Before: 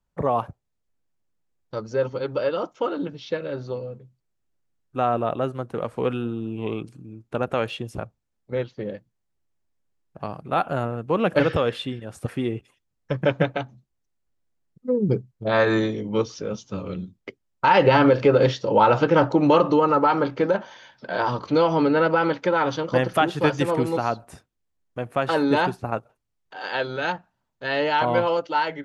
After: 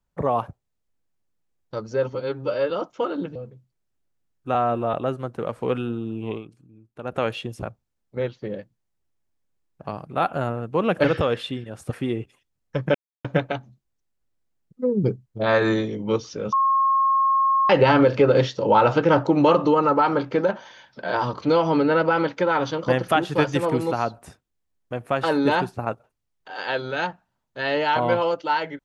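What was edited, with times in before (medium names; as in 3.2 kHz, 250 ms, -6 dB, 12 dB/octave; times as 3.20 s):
2.15–2.52 s: stretch 1.5×
3.17–3.84 s: delete
5.03–5.29 s: stretch 1.5×
6.64–7.53 s: dip -10.5 dB, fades 0.15 s
13.30 s: insert silence 0.30 s
16.58–17.75 s: bleep 1.08 kHz -16 dBFS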